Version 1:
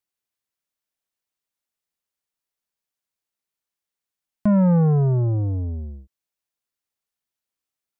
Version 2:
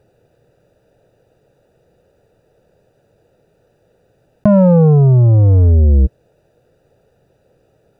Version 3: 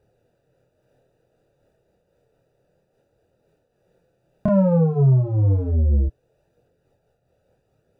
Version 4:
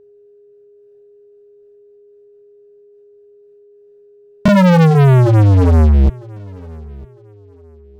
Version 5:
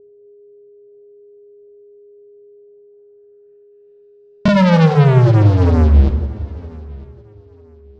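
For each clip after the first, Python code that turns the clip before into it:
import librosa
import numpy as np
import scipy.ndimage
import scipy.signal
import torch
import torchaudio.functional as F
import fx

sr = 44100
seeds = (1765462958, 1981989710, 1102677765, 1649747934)

y1 = fx.wiener(x, sr, points=41)
y1 = fx.graphic_eq(y1, sr, hz=(125, 250, 500), db=(10, -6, 12))
y1 = fx.env_flatten(y1, sr, amount_pct=100)
y1 = y1 * 10.0 ** (1.0 / 20.0)
y2 = fx.chorus_voices(y1, sr, voices=2, hz=0.3, base_ms=27, depth_ms=4.2, mix_pct=50)
y2 = fx.am_noise(y2, sr, seeds[0], hz=5.7, depth_pct=65)
y2 = y2 * 10.0 ** (-3.0 / 20.0)
y3 = fx.leveller(y2, sr, passes=5)
y3 = y3 + 10.0 ** (-46.0 / 20.0) * np.sin(2.0 * np.pi * 410.0 * np.arange(len(y3)) / sr)
y3 = fx.echo_feedback(y3, sr, ms=954, feedback_pct=26, wet_db=-23.0)
y3 = y3 * 10.0 ** (2.0 / 20.0)
y4 = fx.filter_sweep_lowpass(y3, sr, from_hz=550.0, to_hz=4900.0, start_s=2.47, end_s=4.28, q=1.4)
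y4 = fx.rev_plate(y4, sr, seeds[1], rt60_s=1.9, hf_ratio=0.75, predelay_ms=0, drr_db=7.5)
y4 = y4 * 10.0 ** (-2.0 / 20.0)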